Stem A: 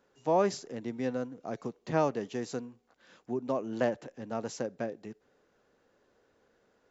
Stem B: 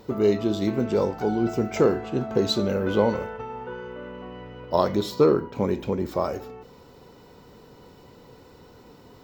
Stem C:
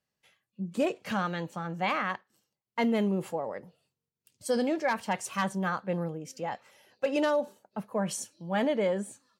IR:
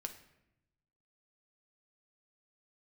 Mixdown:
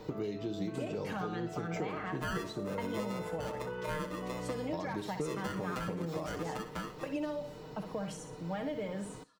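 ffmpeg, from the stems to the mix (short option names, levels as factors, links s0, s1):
-filter_complex "[0:a]aecho=1:1:7.3:0.88,aeval=exprs='val(0)*sgn(sin(2*PI*760*n/s))':c=same,adelay=1950,volume=0.562,asplit=2[s0][s1];[s1]volume=0.237[s2];[1:a]acompressor=threshold=0.02:ratio=3,volume=0.75,asplit=3[s3][s4][s5];[s4]volume=0.631[s6];[s5]volume=0.0708[s7];[2:a]acompressor=threshold=0.0355:ratio=6,volume=0.841,asplit=2[s8][s9];[s9]volume=0.335[s10];[3:a]atrim=start_sample=2205[s11];[s6][s11]afir=irnorm=-1:irlink=0[s12];[s2][s7][s10]amix=inputs=3:normalize=0,aecho=0:1:60|120|180|240:1|0.3|0.09|0.027[s13];[s0][s3][s8][s12][s13]amix=inputs=5:normalize=0,highshelf=f=10000:g=-11,aecho=1:1:6.5:0.54,acrossover=split=240|2100|7900[s14][s15][s16][s17];[s14]acompressor=threshold=0.01:ratio=4[s18];[s15]acompressor=threshold=0.0141:ratio=4[s19];[s16]acompressor=threshold=0.00224:ratio=4[s20];[s17]acompressor=threshold=0.00141:ratio=4[s21];[s18][s19][s20][s21]amix=inputs=4:normalize=0"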